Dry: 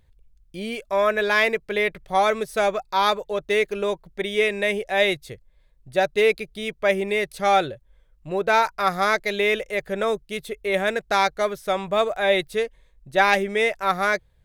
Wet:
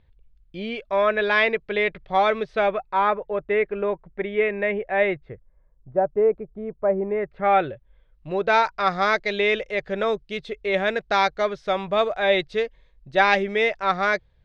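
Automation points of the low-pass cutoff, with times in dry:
low-pass 24 dB/octave
2.45 s 4 kHz
3.07 s 2.2 kHz
5.03 s 2.2 kHz
5.97 s 1.1 kHz
6.98 s 1.1 kHz
7.57 s 2.6 kHz
8.33 s 5.1 kHz

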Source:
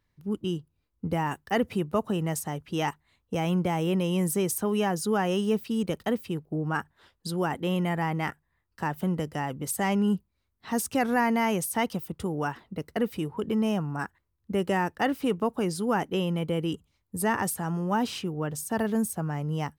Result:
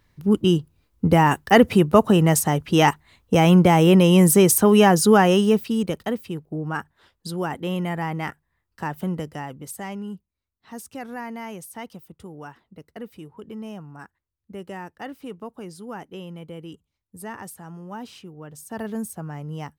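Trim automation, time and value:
5.09 s +12 dB
6.16 s +1 dB
9.14 s +1 dB
10.11 s -9.5 dB
18.45 s -9.5 dB
18.86 s -3 dB

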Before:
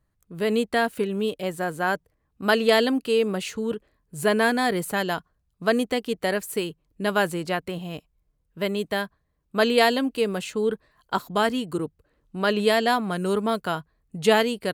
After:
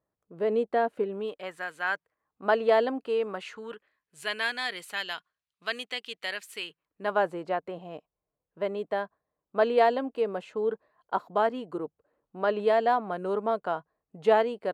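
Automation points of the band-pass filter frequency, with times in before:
band-pass filter, Q 1.2
1.07 s 580 Hz
1.73 s 2.6 kHz
2.46 s 740 Hz
3.04 s 740 Hz
4.25 s 2.9 kHz
6.55 s 2.9 kHz
7.20 s 690 Hz

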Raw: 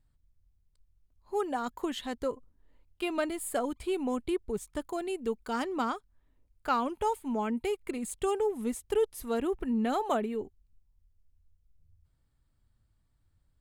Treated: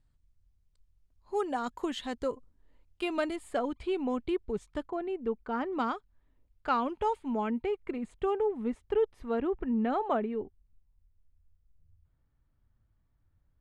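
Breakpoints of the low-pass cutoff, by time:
8.1 kHz
from 3.36 s 4.1 kHz
from 4.87 s 1.8 kHz
from 5.73 s 4 kHz
from 7.62 s 2.2 kHz

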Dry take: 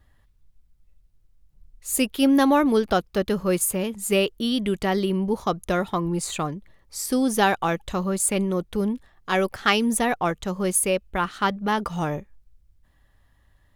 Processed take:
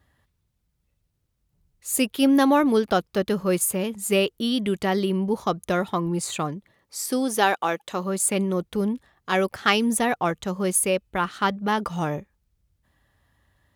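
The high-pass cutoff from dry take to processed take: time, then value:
6.50 s 85 Hz
7.29 s 300 Hz
7.89 s 300 Hz
8.54 s 74 Hz

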